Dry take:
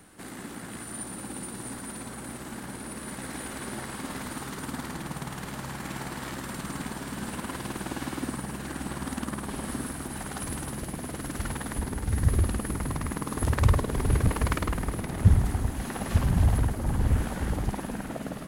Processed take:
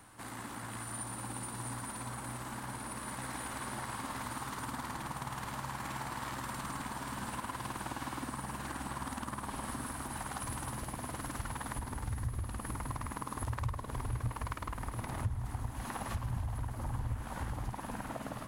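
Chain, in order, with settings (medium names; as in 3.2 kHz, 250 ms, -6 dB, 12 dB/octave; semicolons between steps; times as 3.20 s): fifteen-band graphic EQ 160 Hz -8 dB, 400 Hz -6 dB, 1 kHz +8 dB; compression 6:1, threshold -32 dBFS, peak gain reduction 17 dB; peaking EQ 120 Hz +12 dB 0.26 oct; trim -3.5 dB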